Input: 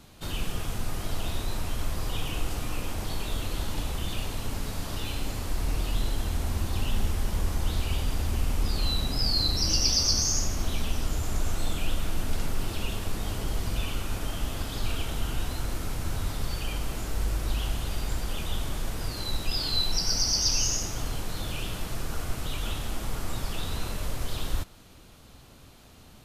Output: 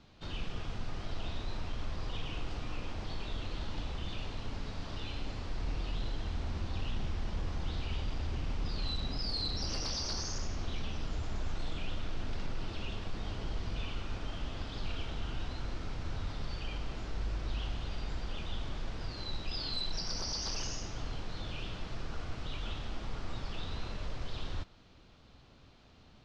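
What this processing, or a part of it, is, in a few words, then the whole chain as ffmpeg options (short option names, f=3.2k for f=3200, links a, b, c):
synthesiser wavefolder: -af "aeval=exprs='0.0891*(abs(mod(val(0)/0.0891+3,4)-2)-1)':c=same,lowpass=f=5.2k:w=0.5412,lowpass=f=5.2k:w=1.3066,volume=-7dB"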